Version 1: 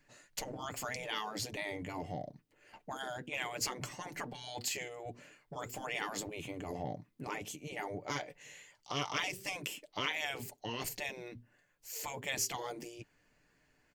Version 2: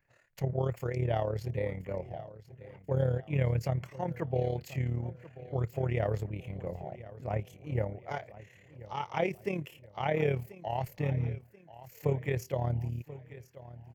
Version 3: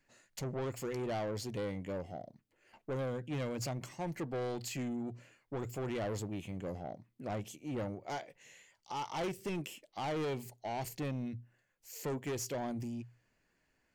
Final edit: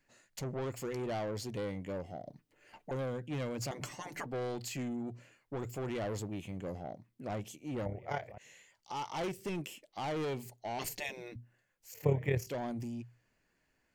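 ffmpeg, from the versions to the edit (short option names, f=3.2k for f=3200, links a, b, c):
-filter_complex "[0:a]asplit=3[a][b][c];[1:a]asplit=2[d][e];[2:a]asplit=6[f][g][h][i][j][k];[f]atrim=end=2.262[l];[a]atrim=start=2.258:end=2.912[m];[g]atrim=start=2.908:end=3.712[n];[b]atrim=start=3.708:end=4.262[o];[h]atrim=start=4.258:end=7.862[p];[d]atrim=start=7.858:end=8.382[q];[i]atrim=start=8.378:end=10.792[r];[c]atrim=start=10.788:end=11.362[s];[j]atrim=start=11.358:end=11.942[t];[e]atrim=start=11.938:end=12.472[u];[k]atrim=start=12.468[v];[l][m]acrossfade=d=0.004:c1=hsin:c2=hsin[w];[w][n]acrossfade=d=0.004:c1=hsin:c2=hsin[x];[x][o]acrossfade=d=0.004:c1=hsin:c2=hsin[y];[y][p]acrossfade=d=0.004:c1=hsin:c2=hsin[z];[z][q]acrossfade=d=0.004:c1=hsin:c2=hsin[aa];[aa][r]acrossfade=d=0.004:c1=hsin:c2=hsin[ab];[ab][s]acrossfade=d=0.004:c1=hsin:c2=hsin[ac];[ac][t]acrossfade=d=0.004:c1=hsin:c2=hsin[ad];[ad][u]acrossfade=d=0.004:c1=hsin:c2=hsin[ae];[ae][v]acrossfade=d=0.004:c1=hsin:c2=hsin"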